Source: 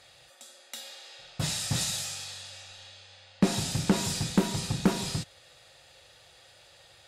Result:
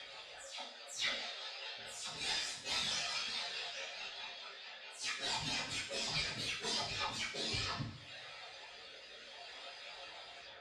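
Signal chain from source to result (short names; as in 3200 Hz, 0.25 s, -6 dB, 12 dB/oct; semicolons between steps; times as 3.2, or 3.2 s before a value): spectral delay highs early, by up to 0.14 s; reverb removal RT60 0.73 s; harmonic-percussive split harmonic -18 dB; negative-ratio compressor -41 dBFS, ratio -0.5; rotary speaker horn 7 Hz, later 0.9 Hz, at 4.07; overdrive pedal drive 15 dB, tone 3900 Hz, clips at -22.5 dBFS; plain phase-vocoder stretch 1.5×; air absorption 95 m; two-slope reverb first 0.56 s, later 2 s, from -21 dB, DRR -3 dB; mismatched tape noise reduction encoder only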